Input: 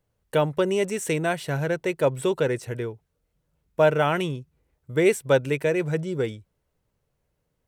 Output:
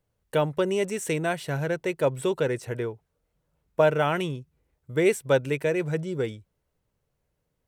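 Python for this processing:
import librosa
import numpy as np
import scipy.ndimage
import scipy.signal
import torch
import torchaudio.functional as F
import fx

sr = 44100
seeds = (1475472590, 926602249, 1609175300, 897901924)

y = fx.peak_eq(x, sr, hz=840.0, db=4.5, octaves=2.3, at=(2.64, 3.81))
y = y * librosa.db_to_amplitude(-2.0)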